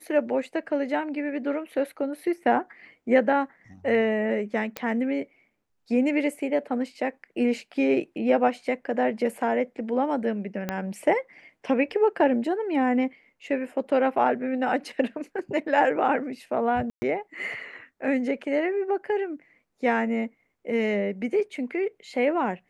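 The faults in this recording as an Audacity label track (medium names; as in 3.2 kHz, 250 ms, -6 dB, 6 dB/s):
4.770000	4.770000	pop -14 dBFS
10.690000	10.690000	pop -13 dBFS
16.900000	17.020000	dropout 120 ms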